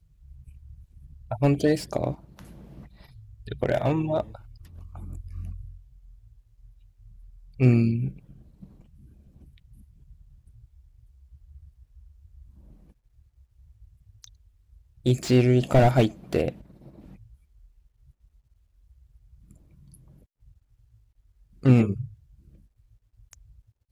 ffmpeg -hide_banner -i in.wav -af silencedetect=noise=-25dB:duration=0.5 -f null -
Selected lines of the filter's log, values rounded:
silence_start: 0.00
silence_end: 1.32 | silence_duration: 1.32
silence_start: 2.12
silence_end: 3.52 | silence_duration: 1.40
silence_start: 4.21
silence_end: 7.61 | silence_duration: 3.40
silence_start: 8.08
silence_end: 15.06 | silence_duration: 6.98
silence_start: 16.49
silence_end: 21.65 | silence_duration: 5.17
silence_start: 22.01
silence_end: 23.91 | silence_duration: 1.90